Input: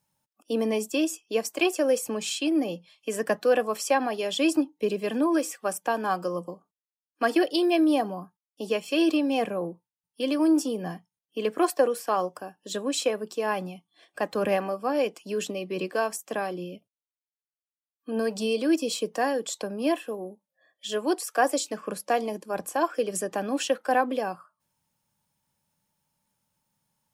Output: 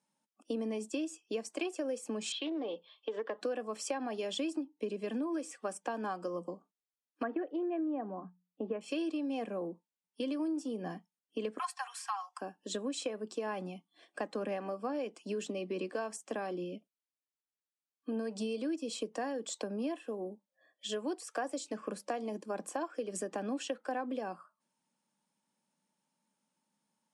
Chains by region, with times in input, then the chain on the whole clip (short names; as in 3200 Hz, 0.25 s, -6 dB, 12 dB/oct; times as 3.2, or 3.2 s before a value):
2.32–3.41 speaker cabinet 420–3800 Hz, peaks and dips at 450 Hz +9 dB, 1100 Hz +7 dB, 2400 Hz -6 dB, 3500 Hz +9 dB + compressor 2:1, threshold -30 dBFS + Doppler distortion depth 0.12 ms
7.23–8.81 LPF 1900 Hz 24 dB/oct + notches 60/120/180 Hz
11.59–12.41 steep high-pass 810 Hz 72 dB/oct + comb 3.8 ms, depth 75%
whole clip: elliptic band-pass 220–9100 Hz, stop band 40 dB; low shelf 340 Hz +9 dB; compressor 6:1, threshold -29 dBFS; gain -4.5 dB